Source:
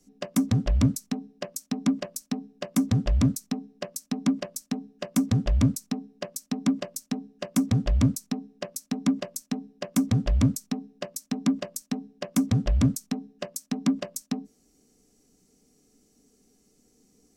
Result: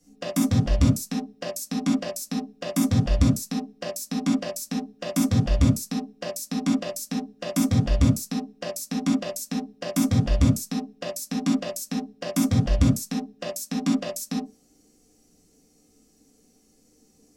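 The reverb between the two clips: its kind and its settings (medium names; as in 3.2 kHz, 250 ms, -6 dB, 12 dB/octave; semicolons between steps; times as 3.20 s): gated-style reverb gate 90 ms flat, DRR -5 dB; trim -2.5 dB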